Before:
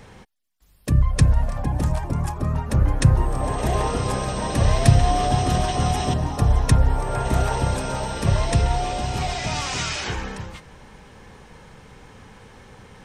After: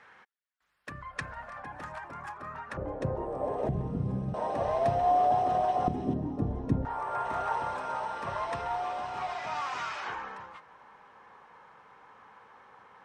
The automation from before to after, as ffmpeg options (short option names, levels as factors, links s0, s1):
-af "asetnsamples=n=441:p=0,asendcmd='2.77 bandpass f 520;3.69 bandpass f 170;4.34 bandpass f 700;5.88 bandpass f 280;6.85 bandpass f 1100',bandpass=f=1500:t=q:w=2.1:csg=0"